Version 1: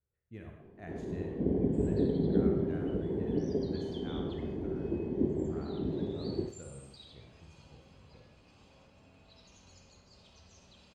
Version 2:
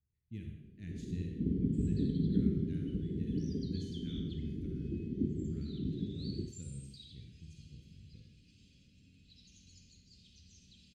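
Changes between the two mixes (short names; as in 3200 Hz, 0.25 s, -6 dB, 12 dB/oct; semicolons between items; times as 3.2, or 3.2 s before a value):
speech +5.0 dB; master: add Chebyshev band-stop 220–3400 Hz, order 2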